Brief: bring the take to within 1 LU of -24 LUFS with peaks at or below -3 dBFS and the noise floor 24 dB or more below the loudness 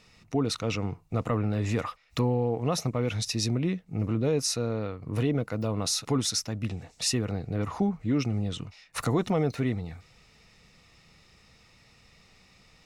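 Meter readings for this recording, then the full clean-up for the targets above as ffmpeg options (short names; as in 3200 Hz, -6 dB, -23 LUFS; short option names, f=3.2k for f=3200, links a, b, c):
loudness -29.0 LUFS; peak -15.5 dBFS; loudness target -24.0 LUFS
-> -af "volume=5dB"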